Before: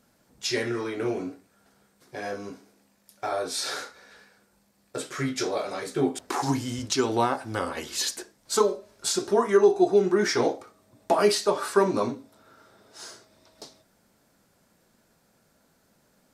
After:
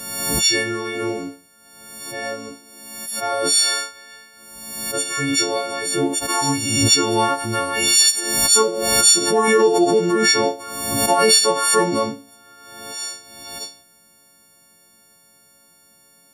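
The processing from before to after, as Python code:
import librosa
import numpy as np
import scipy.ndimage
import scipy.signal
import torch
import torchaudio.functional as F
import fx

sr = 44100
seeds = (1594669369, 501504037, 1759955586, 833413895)

y = fx.freq_snap(x, sr, grid_st=4)
y = fx.pre_swell(y, sr, db_per_s=42.0)
y = y * 10.0 ** (3.0 / 20.0)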